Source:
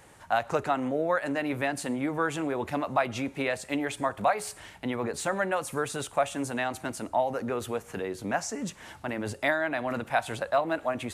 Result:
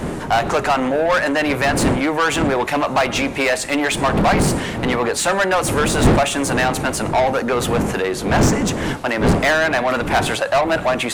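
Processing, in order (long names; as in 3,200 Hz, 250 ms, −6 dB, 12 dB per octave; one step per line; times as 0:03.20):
wind on the microphone 190 Hz −26 dBFS
mid-hump overdrive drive 22 dB, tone 7,600 Hz, clips at −12.5 dBFS
level +4 dB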